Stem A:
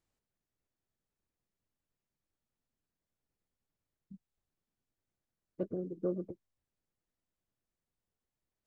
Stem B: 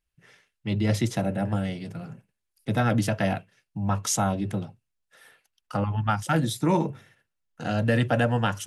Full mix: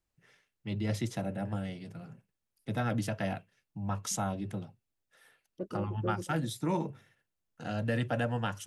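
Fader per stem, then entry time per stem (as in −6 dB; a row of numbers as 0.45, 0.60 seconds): −2.0, −8.5 decibels; 0.00, 0.00 seconds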